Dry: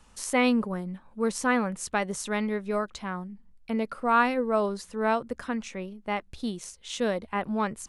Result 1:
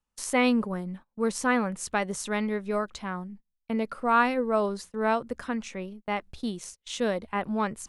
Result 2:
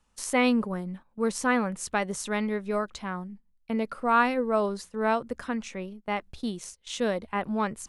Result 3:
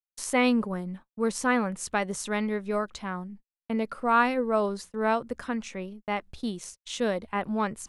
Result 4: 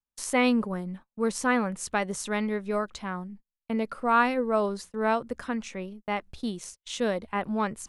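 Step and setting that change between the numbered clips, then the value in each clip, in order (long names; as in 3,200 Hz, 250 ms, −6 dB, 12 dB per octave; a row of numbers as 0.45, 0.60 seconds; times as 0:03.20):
noise gate, range: −28, −13, −59, −40 decibels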